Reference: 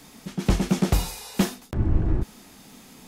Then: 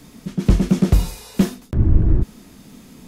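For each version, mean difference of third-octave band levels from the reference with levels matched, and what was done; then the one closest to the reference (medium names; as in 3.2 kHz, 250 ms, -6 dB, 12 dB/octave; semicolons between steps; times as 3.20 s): 4.5 dB: bass shelf 430 Hz +10 dB; in parallel at -10.5 dB: saturation -15.5 dBFS, distortion -7 dB; on the sum: peaking EQ 800 Hz -7 dB 0.2 oct; trim -3 dB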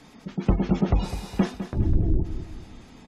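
6.5 dB: low-pass 3.1 kHz 6 dB/octave; spectral gate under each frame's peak -30 dB strong; on a send: feedback delay 205 ms, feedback 43%, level -11 dB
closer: first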